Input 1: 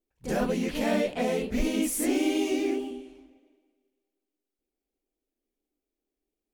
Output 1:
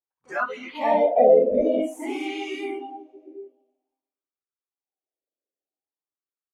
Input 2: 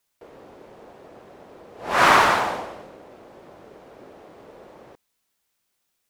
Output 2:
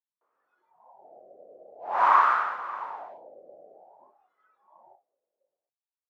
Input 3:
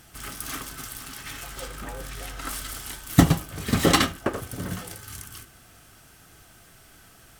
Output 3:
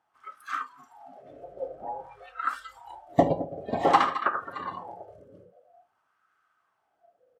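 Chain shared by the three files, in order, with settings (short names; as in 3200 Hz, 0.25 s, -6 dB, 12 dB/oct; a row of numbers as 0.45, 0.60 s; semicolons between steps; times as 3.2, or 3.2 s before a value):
tapped delay 51/67/78/216/621/740 ms -19.5/-17.5/-14/-14/-19/-20 dB; wah 0.51 Hz 550–1300 Hz, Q 4.1; spectral noise reduction 19 dB; normalise peaks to -6 dBFS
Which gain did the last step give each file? +18.0, +0.5, +10.5 dB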